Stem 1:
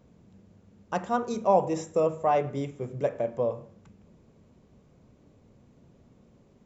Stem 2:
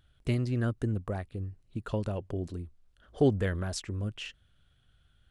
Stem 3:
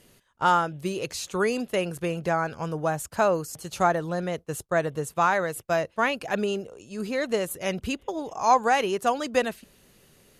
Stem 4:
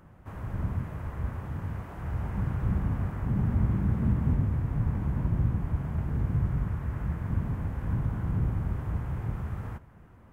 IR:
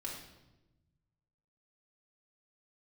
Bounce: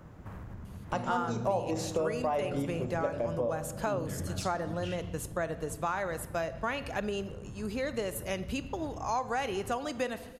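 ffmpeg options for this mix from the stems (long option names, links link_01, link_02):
-filter_complex "[0:a]volume=-0.5dB,asplit=2[link_01][link_02];[link_02]volume=-5dB[link_03];[1:a]acrossover=split=260|3000[link_04][link_05][link_06];[link_05]acompressor=threshold=-37dB:ratio=6[link_07];[link_04][link_07][link_06]amix=inputs=3:normalize=0,adelay=650,volume=0.5dB,asplit=2[link_08][link_09];[link_09]volume=-6dB[link_10];[2:a]adelay=650,volume=-5.5dB,asplit=2[link_11][link_12];[link_12]volume=-9dB[link_13];[3:a]acompressor=threshold=-36dB:ratio=6,volume=2dB[link_14];[link_08][link_14]amix=inputs=2:normalize=0,aeval=exprs='clip(val(0),-1,0.0158)':channel_layout=same,acompressor=threshold=-41dB:ratio=6,volume=0dB[link_15];[4:a]atrim=start_sample=2205[link_16];[link_03][link_10][link_13]amix=inputs=3:normalize=0[link_17];[link_17][link_16]afir=irnorm=-1:irlink=0[link_18];[link_01][link_11][link_15][link_18]amix=inputs=4:normalize=0,acompressor=threshold=-30dB:ratio=3"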